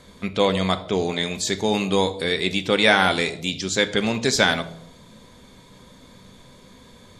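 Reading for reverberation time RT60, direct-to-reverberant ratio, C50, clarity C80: 0.75 s, 9.0 dB, 14.5 dB, 17.5 dB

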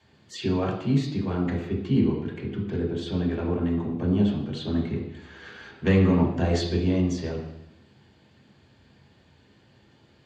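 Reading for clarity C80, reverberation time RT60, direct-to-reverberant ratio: 8.0 dB, 0.90 s, -4.5 dB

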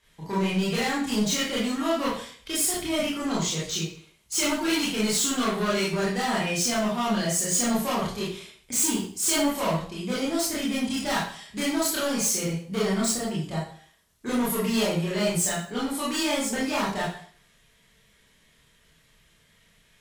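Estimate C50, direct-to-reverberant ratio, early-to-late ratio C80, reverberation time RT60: 3.0 dB, -7.0 dB, 7.5 dB, 0.50 s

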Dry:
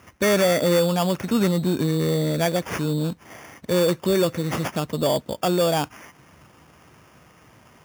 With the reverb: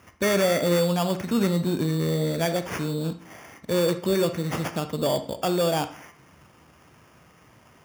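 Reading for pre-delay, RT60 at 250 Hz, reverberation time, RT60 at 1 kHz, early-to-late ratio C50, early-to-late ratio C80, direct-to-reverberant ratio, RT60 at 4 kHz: 30 ms, 0.45 s, 0.50 s, 0.50 s, 11.5 dB, 17.0 dB, 9.5 dB, 0.40 s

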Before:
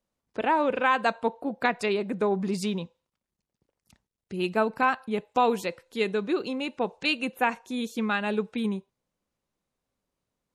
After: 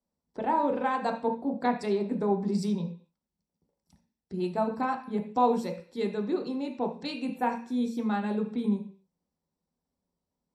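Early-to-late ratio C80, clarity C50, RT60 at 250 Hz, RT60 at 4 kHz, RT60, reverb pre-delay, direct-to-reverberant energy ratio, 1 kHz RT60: 15.0 dB, 10.0 dB, 0.55 s, n/a, 0.45 s, 10 ms, 2.5 dB, 0.45 s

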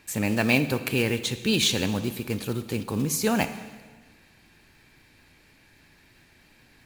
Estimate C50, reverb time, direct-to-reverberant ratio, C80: 12.0 dB, 1.4 s, 11.0 dB, 13.5 dB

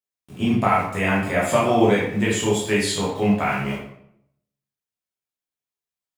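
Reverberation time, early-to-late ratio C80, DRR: 0.70 s, 6.5 dB, -6.5 dB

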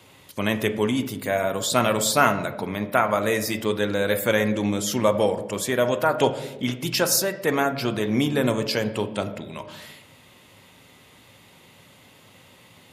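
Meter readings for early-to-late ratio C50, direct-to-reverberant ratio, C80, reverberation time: 12.0 dB, 8.0 dB, 14.0 dB, 1.1 s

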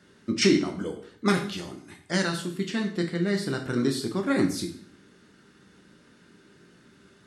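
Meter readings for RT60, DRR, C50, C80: 0.55 s, 3.5 dB, 9.0 dB, 13.0 dB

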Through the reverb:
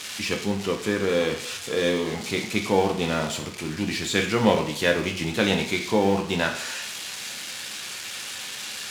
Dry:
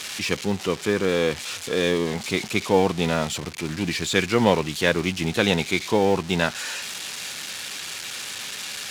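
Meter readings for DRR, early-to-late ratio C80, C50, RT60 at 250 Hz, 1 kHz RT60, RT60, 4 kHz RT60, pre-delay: 3.5 dB, 12.0 dB, 9.0 dB, 0.65 s, 0.60 s, 0.60 s, 0.55 s, 6 ms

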